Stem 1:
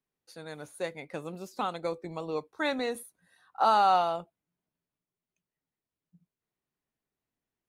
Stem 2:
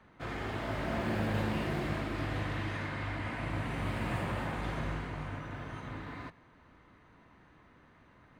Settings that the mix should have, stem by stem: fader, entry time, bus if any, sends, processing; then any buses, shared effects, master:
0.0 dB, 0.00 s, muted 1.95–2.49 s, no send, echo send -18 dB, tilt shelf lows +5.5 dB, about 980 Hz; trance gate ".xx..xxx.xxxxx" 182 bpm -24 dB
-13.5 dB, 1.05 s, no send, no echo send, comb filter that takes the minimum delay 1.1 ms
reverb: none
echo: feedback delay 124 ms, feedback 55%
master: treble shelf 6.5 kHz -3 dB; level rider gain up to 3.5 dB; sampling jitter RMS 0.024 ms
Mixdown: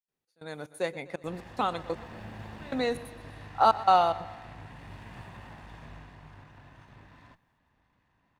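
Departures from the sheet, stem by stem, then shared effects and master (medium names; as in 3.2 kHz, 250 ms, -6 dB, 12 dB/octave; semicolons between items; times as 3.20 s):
stem 1: missing tilt shelf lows +5.5 dB, about 980 Hz; master: missing sampling jitter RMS 0.024 ms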